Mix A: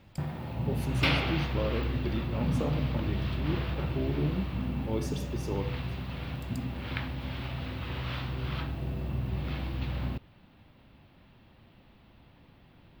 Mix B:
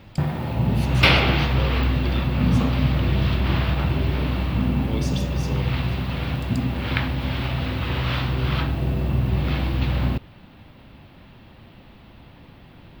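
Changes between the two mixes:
speech: add weighting filter D; background +11.0 dB

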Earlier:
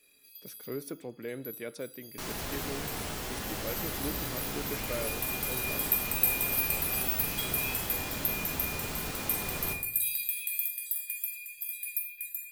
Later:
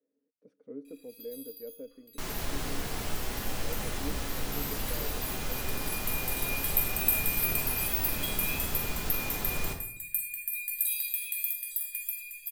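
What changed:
speech: add double band-pass 360 Hz, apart 0.73 oct; first sound: entry +0.85 s; master: remove HPF 69 Hz 6 dB/oct

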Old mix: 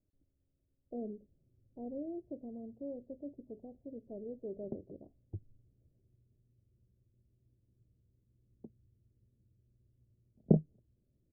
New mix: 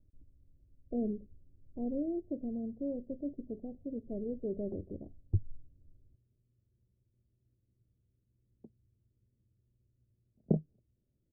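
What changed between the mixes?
speech: add tilt -4 dB/oct; background -3.5 dB

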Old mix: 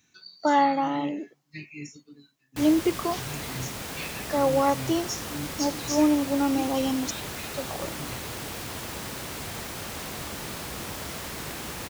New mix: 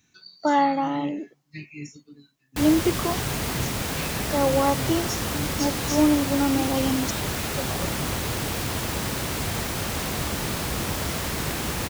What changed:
background +6.5 dB; master: add low shelf 190 Hz +6 dB

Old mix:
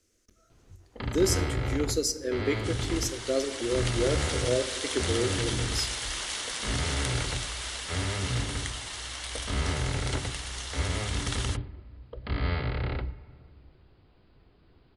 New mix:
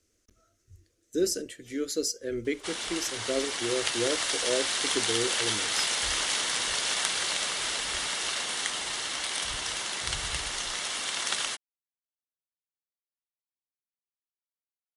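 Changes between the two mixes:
first sound: muted; second sound +5.5 dB; reverb: off

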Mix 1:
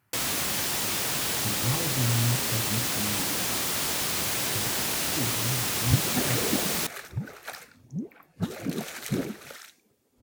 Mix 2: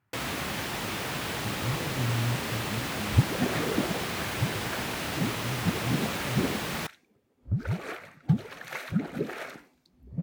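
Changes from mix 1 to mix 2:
speech -5.0 dB; second sound: entry -2.75 s; master: add tone controls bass +2 dB, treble -13 dB

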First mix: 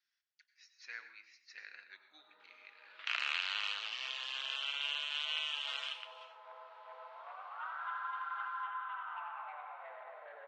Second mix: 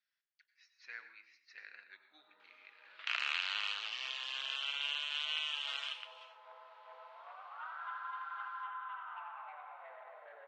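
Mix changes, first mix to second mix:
speech: add air absorption 140 m; first sound: send -11.5 dB

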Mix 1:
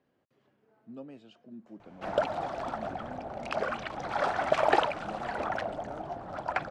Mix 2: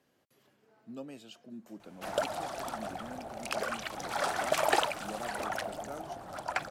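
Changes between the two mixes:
background -5.5 dB; master: remove tape spacing loss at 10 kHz 26 dB

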